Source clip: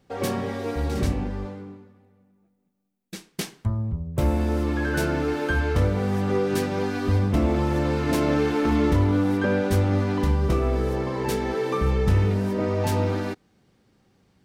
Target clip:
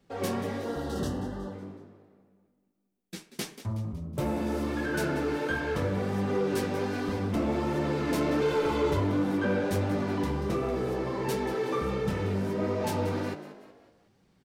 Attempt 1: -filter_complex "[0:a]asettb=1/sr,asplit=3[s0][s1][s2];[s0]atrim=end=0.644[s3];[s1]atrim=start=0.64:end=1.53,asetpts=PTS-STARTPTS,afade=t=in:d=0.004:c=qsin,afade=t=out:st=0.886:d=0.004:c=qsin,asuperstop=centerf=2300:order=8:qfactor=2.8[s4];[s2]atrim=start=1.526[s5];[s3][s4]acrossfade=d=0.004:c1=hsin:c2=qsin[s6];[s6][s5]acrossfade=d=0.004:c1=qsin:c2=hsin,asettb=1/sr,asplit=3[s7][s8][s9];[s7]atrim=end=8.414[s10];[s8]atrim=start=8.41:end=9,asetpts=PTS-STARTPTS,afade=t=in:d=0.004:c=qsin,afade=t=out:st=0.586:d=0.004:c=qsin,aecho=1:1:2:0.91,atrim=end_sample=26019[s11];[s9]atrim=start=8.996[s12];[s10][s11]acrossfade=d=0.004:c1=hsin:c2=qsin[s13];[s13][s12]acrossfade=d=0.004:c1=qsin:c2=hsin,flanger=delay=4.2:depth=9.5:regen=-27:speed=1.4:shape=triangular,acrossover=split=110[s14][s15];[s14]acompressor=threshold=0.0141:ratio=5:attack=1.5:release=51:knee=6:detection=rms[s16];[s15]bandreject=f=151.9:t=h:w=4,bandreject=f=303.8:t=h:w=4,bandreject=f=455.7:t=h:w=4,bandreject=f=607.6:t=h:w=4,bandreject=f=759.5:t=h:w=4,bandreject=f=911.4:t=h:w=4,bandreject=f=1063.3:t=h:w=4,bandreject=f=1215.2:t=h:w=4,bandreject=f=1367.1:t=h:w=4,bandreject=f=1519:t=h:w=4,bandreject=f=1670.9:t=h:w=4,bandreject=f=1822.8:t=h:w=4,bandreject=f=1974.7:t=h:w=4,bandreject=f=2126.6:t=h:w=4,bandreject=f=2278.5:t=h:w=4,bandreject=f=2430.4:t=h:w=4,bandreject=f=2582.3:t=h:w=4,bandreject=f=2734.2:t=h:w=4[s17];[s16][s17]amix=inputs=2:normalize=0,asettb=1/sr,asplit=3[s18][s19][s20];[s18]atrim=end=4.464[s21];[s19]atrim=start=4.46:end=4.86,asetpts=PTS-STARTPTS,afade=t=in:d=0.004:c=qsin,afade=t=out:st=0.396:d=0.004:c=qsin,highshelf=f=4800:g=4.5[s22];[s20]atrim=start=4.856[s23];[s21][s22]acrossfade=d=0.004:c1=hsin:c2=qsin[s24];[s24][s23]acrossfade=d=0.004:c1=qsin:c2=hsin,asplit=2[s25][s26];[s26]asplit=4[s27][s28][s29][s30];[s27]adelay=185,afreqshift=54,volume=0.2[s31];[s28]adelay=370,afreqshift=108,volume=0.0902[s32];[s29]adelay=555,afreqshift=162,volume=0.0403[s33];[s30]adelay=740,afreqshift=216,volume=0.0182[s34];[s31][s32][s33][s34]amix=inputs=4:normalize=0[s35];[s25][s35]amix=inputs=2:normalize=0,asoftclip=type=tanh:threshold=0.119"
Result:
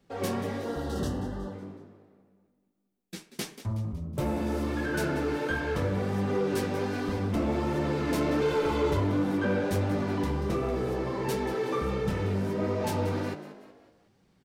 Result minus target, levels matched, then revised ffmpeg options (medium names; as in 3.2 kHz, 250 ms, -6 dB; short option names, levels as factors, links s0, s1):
compression: peak gain reduction -5 dB
-filter_complex "[0:a]asettb=1/sr,asplit=3[s0][s1][s2];[s0]atrim=end=0.644[s3];[s1]atrim=start=0.64:end=1.53,asetpts=PTS-STARTPTS,afade=t=in:d=0.004:c=qsin,afade=t=out:st=0.886:d=0.004:c=qsin,asuperstop=centerf=2300:order=8:qfactor=2.8[s4];[s2]atrim=start=1.526[s5];[s3][s4]acrossfade=d=0.004:c1=hsin:c2=qsin[s6];[s6][s5]acrossfade=d=0.004:c1=qsin:c2=hsin,asettb=1/sr,asplit=3[s7][s8][s9];[s7]atrim=end=8.414[s10];[s8]atrim=start=8.41:end=9,asetpts=PTS-STARTPTS,afade=t=in:d=0.004:c=qsin,afade=t=out:st=0.586:d=0.004:c=qsin,aecho=1:1:2:0.91,atrim=end_sample=26019[s11];[s9]atrim=start=8.996[s12];[s10][s11]acrossfade=d=0.004:c1=hsin:c2=qsin[s13];[s13][s12]acrossfade=d=0.004:c1=qsin:c2=hsin,flanger=delay=4.2:depth=9.5:regen=-27:speed=1.4:shape=triangular,acrossover=split=110[s14][s15];[s14]acompressor=threshold=0.00668:ratio=5:attack=1.5:release=51:knee=6:detection=rms[s16];[s15]bandreject=f=151.9:t=h:w=4,bandreject=f=303.8:t=h:w=4,bandreject=f=455.7:t=h:w=4,bandreject=f=607.6:t=h:w=4,bandreject=f=759.5:t=h:w=4,bandreject=f=911.4:t=h:w=4,bandreject=f=1063.3:t=h:w=4,bandreject=f=1215.2:t=h:w=4,bandreject=f=1367.1:t=h:w=4,bandreject=f=1519:t=h:w=4,bandreject=f=1670.9:t=h:w=4,bandreject=f=1822.8:t=h:w=4,bandreject=f=1974.7:t=h:w=4,bandreject=f=2126.6:t=h:w=4,bandreject=f=2278.5:t=h:w=4,bandreject=f=2430.4:t=h:w=4,bandreject=f=2582.3:t=h:w=4,bandreject=f=2734.2:t=h:w=4[s17];[s16][s17]amix=inputs=2:normalize=0,asettb=1/sr,asplit=3[s18][s19][s20];[s18]atrim=end=4.464[s21];[s19]atrim=start=4.46:end=4.86,asetpts=PTS-STARTPTS,afade=t=in:d=0.004:c=qsin,afade=t=out:st=0.396:d=0.004:c=qsin,highshelf=f=4800:g=4.5[s22];[s20]atrim=start=4.856[s23];[s21][s22]acrossfade=d=0.004:c1=hsin:c2=qsin[s24];[s24][s23]acrossfade=d=0.004:c1=qsin:c2=hsin,asplit=2[s25][s26];[s26]asplit=4[s27][s28][s29][s30];[s27]adelay=185,afreqshift=54,volume=0.2[s31];[s28]adelay=370,afreqshift=108,volume=0.0902[s32];[s29]adelay=555,afreqshift=162,volume=0.0403[s33];[s30]adelay=740,afreqshift=216,volume=0.0182[s34];[s31][s32][s33][s34]amix=inputs=4:normalize=0[s35];[s25][s35]amix=inputs=2:normalize=0,asoftclip=type=tanh:threshold=0.119"